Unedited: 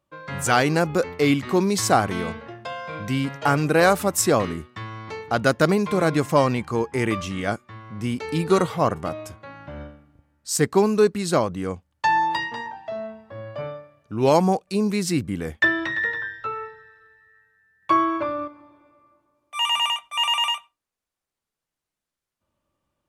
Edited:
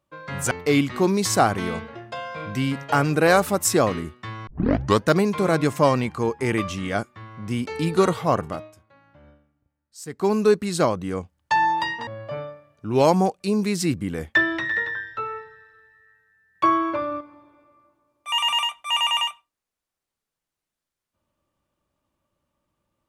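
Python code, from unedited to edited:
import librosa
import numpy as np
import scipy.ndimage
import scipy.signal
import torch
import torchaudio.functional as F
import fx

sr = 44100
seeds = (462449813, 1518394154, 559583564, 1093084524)

y = fx.edit(x, sr, fx.cut(start_s=0.51, length_s=0.53),
    fx.tape_start(start_s=5.0, length_s=0.6),
    fx.fade_down_up(start_s=8.99, length_s=1.91, db=-15.0, fade_s=0.26),
    fx.cut(start_s=12.6, length_s=0.74), tone=tone)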